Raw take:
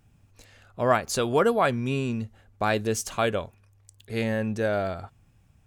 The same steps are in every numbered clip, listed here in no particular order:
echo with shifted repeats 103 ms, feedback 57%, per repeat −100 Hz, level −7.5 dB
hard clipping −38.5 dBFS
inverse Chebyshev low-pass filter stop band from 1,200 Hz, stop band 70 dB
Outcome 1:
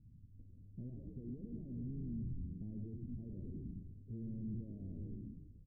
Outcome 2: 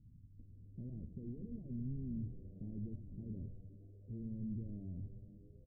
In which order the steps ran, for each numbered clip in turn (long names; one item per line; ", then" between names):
echo with shifted repeats, then hard clipping, then inverse Chebyshev low-pass filter
hard clipping, then inverse Chebyshev low-pass filter, then echo with shifted repeats